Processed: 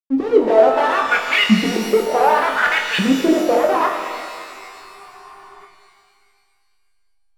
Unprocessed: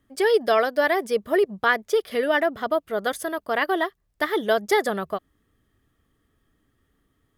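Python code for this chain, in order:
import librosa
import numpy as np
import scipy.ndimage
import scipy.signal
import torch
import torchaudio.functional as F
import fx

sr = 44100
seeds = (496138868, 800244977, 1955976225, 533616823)

p1 = fx.fold_sine(x, sr, drive_db=20, ceiling_db=-7.0)
p2 = x + F.gain(torch.from_numpy(p1), -4.5).numpy()
p3 = fx.high_shelf(p2, sr, hz=2300.0, db=4.5)
p4 = fx.filter_lfo_bandpass(p3, sr, shape='saw_up', hz=0.67, low_hz=210.0, high_hz=3000.0, q=4.2)
p5 = fx.air_absorb(p4, sr, metres=210.0)
p6 = fx.backlash(p5, sr, play_db=-37.0)
p7 = p6 + fx.room_flutter(p6, sr, wall_m=3.9, rt60_s=0.22, dry=0)
p8 = fx.spec_freeze(p7, sr, seeds[0], at_s=3.96, hold_s=1.69)
p9 = fx.rev_shimmer(p8, sr, seeds[1], rt60_s=2.1, semitones=12, shimmer_db=-8, drr_db=5.0)
y = F.gain(torch.from_numpy(p9), 6.0).numpy()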